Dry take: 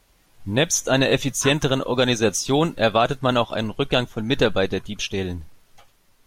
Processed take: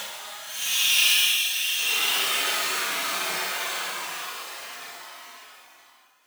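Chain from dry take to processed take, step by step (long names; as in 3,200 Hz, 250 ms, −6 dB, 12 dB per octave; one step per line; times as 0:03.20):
each half-wave held at its own peak
high-pass filter 1,300 Hz 12 dB per octave
reverb whose tail is shaped and stops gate 150 ms flat, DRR 1.5 dB
extreme stretch with random phases 9.6×, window 0.05 s, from 0:04.93
level +1.5 dB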